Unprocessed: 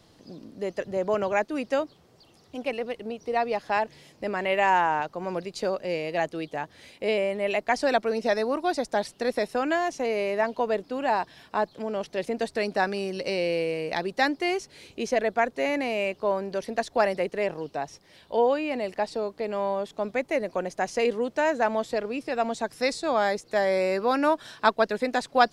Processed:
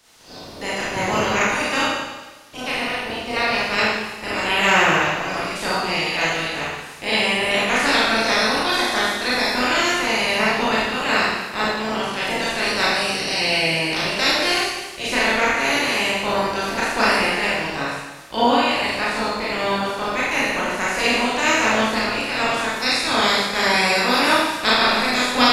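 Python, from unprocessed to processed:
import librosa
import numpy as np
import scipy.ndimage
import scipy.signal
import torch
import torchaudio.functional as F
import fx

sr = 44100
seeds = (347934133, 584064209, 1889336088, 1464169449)

y = fx.spec_clip(x, sr, under_db=25)
y = fx.rev_schroeder(y, sr, rt60_s=1.2, comb_ms=25, drr_db=-7.5)
y = y * 10.0 ** (-1.0 / 20.0)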